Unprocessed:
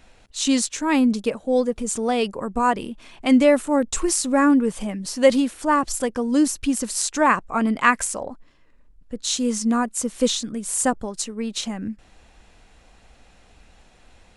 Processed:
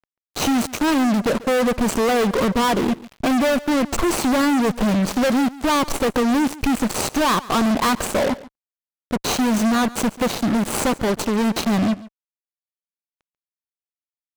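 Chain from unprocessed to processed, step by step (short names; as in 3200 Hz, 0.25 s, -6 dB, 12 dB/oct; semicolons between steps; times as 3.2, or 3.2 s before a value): median filter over 25 samples; low shelf 110 Hz -7.5 dB; compressor 3:1, threshold -25 dBFS, peak gain reduction 11 dB; fuzz box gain 42 dB, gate -46 dBFS; power-law curve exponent 1.4; echo 0.14 s -19 dB; gain -1.5 dB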